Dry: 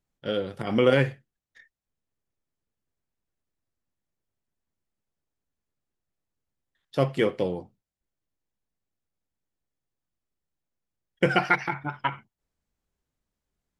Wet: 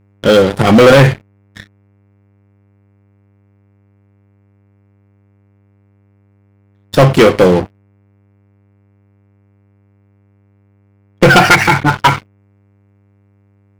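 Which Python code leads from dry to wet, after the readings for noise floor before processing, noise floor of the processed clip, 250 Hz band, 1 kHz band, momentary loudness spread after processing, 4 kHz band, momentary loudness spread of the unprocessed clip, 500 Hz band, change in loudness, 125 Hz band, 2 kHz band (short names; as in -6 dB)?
under -85 dBFS, -52 dBFS, +17.0 dB, +17.5 dB, 9 LU, +18.0 dB, 11 LU, +16.0 dB, +16.5 dB, +18.0 dB, +16.5 dB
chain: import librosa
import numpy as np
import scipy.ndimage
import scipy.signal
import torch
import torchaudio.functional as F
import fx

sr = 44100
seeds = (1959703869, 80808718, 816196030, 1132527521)

y = fx.dmg_buzz(x, sr, base_hz=100.0, harmonics=24, level_db=-48.0, tilt_db=-8, odd_only=False)
y = fx.leveller(y, sr, passes=5)
y = y * librosa.db_to_amplitude(5.0)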